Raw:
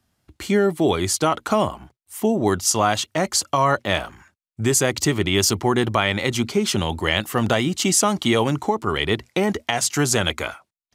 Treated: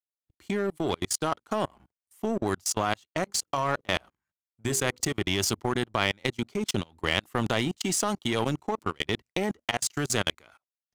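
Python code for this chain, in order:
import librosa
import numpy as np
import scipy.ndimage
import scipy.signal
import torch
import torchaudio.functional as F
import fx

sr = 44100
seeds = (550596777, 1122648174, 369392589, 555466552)

y = fx.hum_notches(x, sr, base_hz=50, count=10, at=(3.23, 5.13))
y = fx.level_steps(y, sr, step_db=22)
y = fx.power_curve(y, sr, exponent=1.4)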